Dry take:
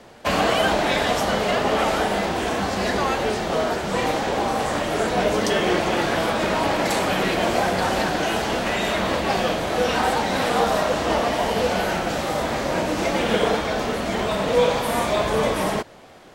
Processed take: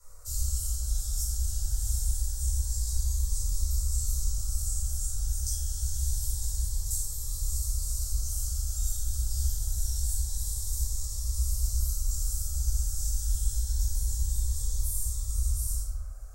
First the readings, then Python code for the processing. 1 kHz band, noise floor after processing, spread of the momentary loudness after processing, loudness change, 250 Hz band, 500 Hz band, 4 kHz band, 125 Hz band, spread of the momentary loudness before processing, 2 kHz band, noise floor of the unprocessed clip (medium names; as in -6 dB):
under -40 dB, -36 dBFS, 2 LU, -9.5 dB, under -35 dB, under -40 dB, -16.5 dB, +0.5 dB, 4 LU, under -40 dB, -27 dBFS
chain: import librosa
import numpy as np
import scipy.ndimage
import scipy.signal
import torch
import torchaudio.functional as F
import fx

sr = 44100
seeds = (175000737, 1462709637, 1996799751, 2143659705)

y = scipy.signal.sosfilt(scipy.signal.cheby2(4, 60, [190.0, 2600.0], 'bandstop', fs=sr, output='sos'), x)
y = fx.peak_eq(y, sr, hz=11000.0, db=-6.0, octaves=0.41)
y = fx.rider(y, sr, range_db=10, speed_s=0.5)
y = fx.dmg_noise_band(y, sr, seeds[0], low_hz=420.0, high_hz=1600.0, level_db=-75.0)
y = fx.room_shoebox(y, sr, seeds[1], volume_m3=360.0, walls='mixed', distance_m=4.6)
y = fx.notch_cascade(y, sr, direction='rising', hz=0.26)